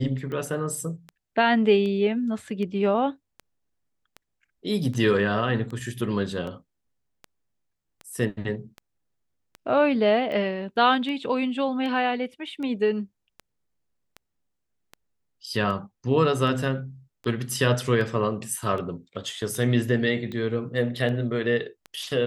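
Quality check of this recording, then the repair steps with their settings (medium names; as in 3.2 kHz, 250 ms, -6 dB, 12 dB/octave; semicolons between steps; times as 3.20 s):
tick 78 rpm -24 dBFS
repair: de-click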